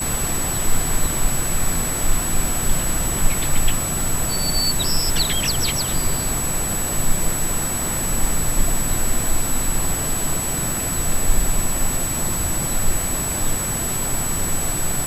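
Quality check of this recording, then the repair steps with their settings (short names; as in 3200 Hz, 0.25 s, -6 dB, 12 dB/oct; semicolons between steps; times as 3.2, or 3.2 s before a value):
crackle 43/s -24 dBFS
tone 7900 Hz -24 dBFS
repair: de-click; notch 7900 Hz, Q 30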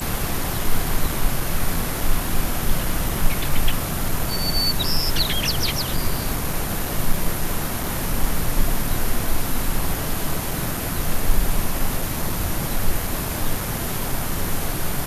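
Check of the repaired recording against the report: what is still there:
none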